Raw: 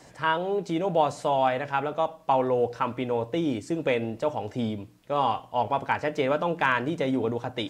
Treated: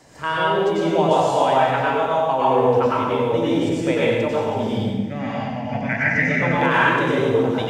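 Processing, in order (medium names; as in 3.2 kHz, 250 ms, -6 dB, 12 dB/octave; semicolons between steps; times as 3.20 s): 4.76–6.42 s: FFT filter 110 Hz 0 dB, 170 Hz +12 dB, 240 Hz +8 dB, 400 Hz -16 dB, 670 Hz -4 dB, 1 kHz -20 dB, 2 kHz +14 dB, 3.2 kHz -14 dB, 6 kHz +2 dB, 9 kHz -14 dB; reverberation RT60 1.4 s, pre-delay 88 ms, DRR -7 dB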